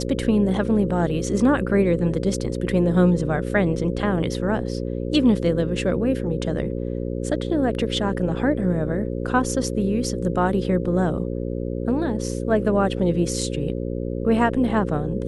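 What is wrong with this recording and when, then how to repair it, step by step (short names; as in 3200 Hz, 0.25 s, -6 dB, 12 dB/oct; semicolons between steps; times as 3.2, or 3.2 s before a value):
buzz 60 Hz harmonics 9 -27 dBFS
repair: de-hum 60 Hz, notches 9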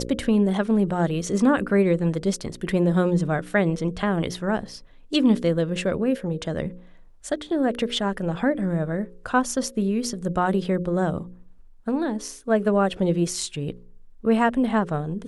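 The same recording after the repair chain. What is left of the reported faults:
none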